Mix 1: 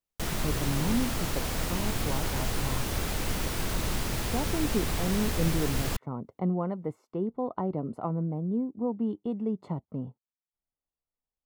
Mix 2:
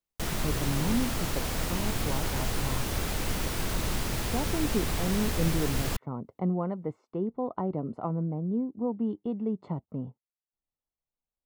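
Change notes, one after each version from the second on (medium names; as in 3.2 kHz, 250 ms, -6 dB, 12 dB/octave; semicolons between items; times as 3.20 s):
speech: add distance through air 97 m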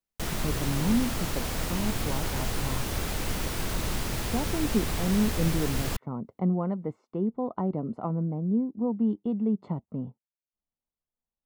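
speech: add peaking EQ 210 Hz +5.5 dB 0.45 oct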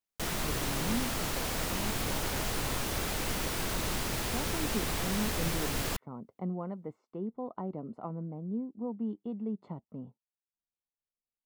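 speech -6.5 dB; master: add bass shelf 190 Hz -6.5 dB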